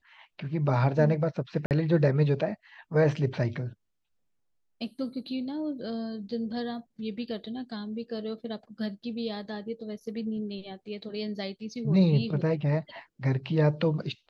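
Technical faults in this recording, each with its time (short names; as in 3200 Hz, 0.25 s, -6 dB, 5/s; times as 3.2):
1.66–1.71 gap 48 ms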